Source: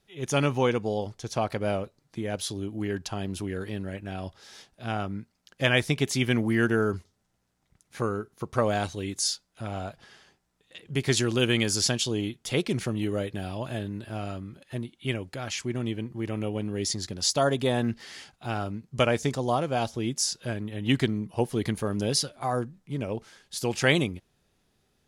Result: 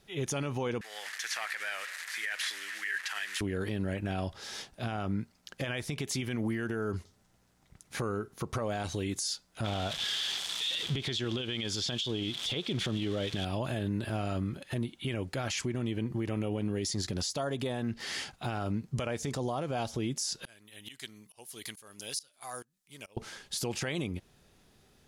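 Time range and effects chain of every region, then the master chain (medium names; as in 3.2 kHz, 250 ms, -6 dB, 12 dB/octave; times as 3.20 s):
0.81–3.41 s: one-bit delta coder 64 kbps, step -42 dBFS + compression, threshold -29 dBFS + resonant high-pass 1.8 kHz, resonance Q 5.7
9.64–13.45 s: zero-crossing glitches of -27.5 dBFS + low-pass 4.6 kHz + peaking EQ 3.4 kHz +14 dB 0.33 oct
20.45–23.17 s: pre-emphasis filter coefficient 0.97 + tremolo saw up 2.3 Hz, depth 95%
whole clip: compression 6:1, threshold -32 dBFS; peak limiter -31.5 dBFS; trim +7 dB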